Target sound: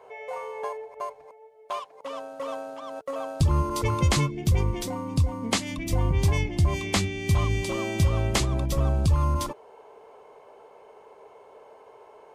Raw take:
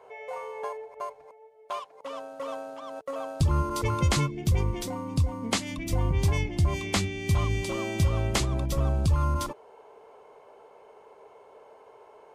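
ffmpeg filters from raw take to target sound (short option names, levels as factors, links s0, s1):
-af "bandreject=f=1400:w=29,volume=1.26"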